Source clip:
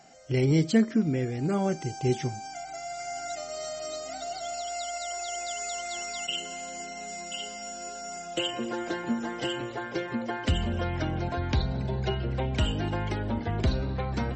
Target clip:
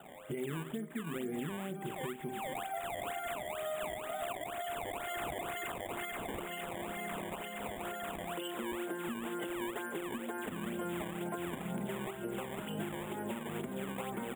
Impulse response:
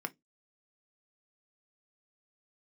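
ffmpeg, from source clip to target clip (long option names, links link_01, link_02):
-filter_complex "[0:a]equalizer=frequency=1500:width_type=o:width=2.2:gain=-5[link_01];[1:a]atrim=start_sample=2205[link_02];[link_01][link_02]afir=irnorm=-1:irlink=0,acompressor=threshold=-29dB:ratio=6,highpass=120,aecho=1:1:247:0.211,acrusher=samples=19:mix=1:aa=0.000001:lfo=1:lforange=30.4:lforate=2.1,asuperstop=centerf=5100:order=12:qfactor=1.4,lowshelf=frequency=230:gain=-7,alimiter=level_in=10dB:limit=-24dB:level=0:latency=1:release=454,volume=-10dB,volume=5dB"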